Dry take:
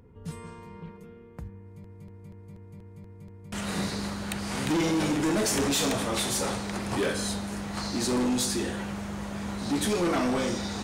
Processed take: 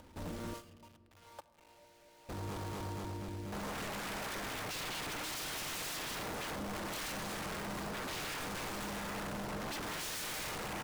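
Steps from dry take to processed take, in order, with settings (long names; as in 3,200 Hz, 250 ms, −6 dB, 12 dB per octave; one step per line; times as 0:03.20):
running median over 25 samples
0:00.53–0:02.29: high-pass filter 530 Hz 24 dB per octave
noise gate −48 dBFS, range −40 dB
parametric band 830 Hz +12 dB 1.2 octaves
comb filter 3.4 ms, depth 98%
upward compression, threshold −23 dBFS
log-companded quantiser 4 bits
rotating-speaker cabinet horn 0.65 Hz
wave folding −32.5 dBFS
rectangular room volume 3,800 cubic metres, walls mixed, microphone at 0.49 metres
level −3.5 dB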